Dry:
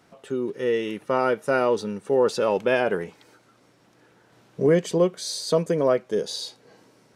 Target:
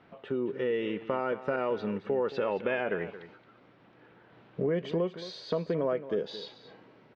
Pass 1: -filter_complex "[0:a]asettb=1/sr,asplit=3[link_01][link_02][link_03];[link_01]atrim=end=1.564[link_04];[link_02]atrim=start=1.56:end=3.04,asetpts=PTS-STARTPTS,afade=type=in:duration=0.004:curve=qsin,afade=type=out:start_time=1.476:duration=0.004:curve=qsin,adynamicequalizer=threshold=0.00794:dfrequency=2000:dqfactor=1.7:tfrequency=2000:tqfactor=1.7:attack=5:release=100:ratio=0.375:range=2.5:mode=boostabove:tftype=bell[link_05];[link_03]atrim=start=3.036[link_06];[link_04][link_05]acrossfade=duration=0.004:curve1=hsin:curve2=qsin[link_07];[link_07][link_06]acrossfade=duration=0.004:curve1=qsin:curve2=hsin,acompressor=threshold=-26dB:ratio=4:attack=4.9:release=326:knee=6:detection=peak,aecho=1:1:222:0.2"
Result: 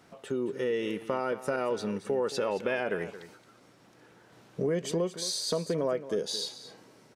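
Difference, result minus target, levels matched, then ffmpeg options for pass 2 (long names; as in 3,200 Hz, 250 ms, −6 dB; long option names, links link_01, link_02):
4,000 Hz band +7.5 dB
-filter_complex "[0:a]asettb=1/sr,asplit=3[link_01][link_02][link_03];[link_01]atrim=end=1.564[link_04];[link_02]atrim=start=1.56:end=3.04,asetpts=PTS-STARTPTS,afade=type=in:duration=0.004:curve=qsin,afade=type=out:start_time=1.476:duration=0.004:curve=qsin,adynamicequalizer=threshold=0.00794:dfrequency=2000:dqfactor=1.7:tfrequency=2000:tqfactor=1.7:attack=5:release=100:ratio=0.375:range=2.5:mode=boostabove:tftype=bell[link_05];[link_03]atrim=start=3.036[link_06];[link_04][link_05]acrossfade=duration=0.004:curve1=hsin:curve2=qsin[link_07];[link_07][link_06]acrossfade=duration=0.004:curve1=qsin:curve2=hsin,acompressor=threshold=-26dB:ratio=4:attack=4.9:release=326:knee=6:detection=peak,lowpass=frequency=3300:width=0.5412,lowpass=frequency=3300:width=1.3066,aecho=1:1:222:0.2"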